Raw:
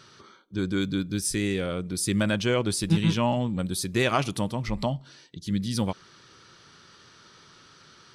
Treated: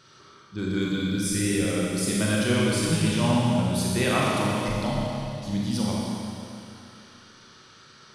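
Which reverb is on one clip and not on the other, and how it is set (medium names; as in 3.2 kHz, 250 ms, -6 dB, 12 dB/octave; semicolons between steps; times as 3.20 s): Schroeder reverb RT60 2.7 s, combs from 29 ms, DRR -5 dB; trim -4 dB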